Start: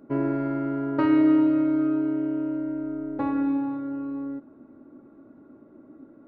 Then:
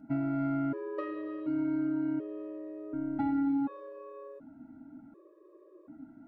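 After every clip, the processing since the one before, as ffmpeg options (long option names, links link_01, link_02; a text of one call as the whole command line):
ffmpeg -i in.wav -af "acompressor=threshold=-26dB:ratio=5,afftfilt=real='re*gt(sin(2*PI*0.68*pts/sr)*(1-2*mod(floor(b*sr/1024/320),2)),0)':imag='im*gt(sin(2*PI*0.68*pts/sr)*(1-2*mod(floor(b*sr/1024/320),2)),0)':win_size=1024:overlap=0.75" out.wav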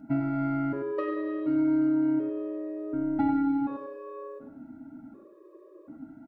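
ffmpeg -i in.wav -af "aecho=1:1:96|192|288:0.355|0.0852|0.0204,volume=4.5dB" out.wav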